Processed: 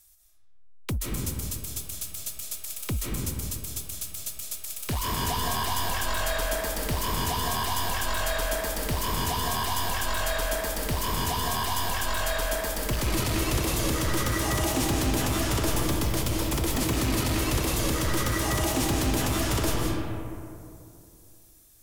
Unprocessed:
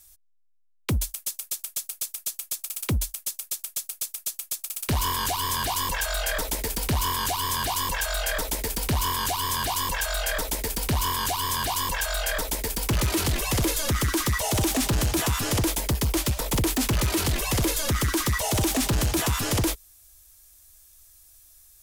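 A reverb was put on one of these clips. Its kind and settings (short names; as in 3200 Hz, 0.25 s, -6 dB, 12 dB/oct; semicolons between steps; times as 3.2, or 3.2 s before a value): digital reverb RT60 2.6 s, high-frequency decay 0.4×, pre-delay 0.115 s, DRR -2 dB; gain -5 dB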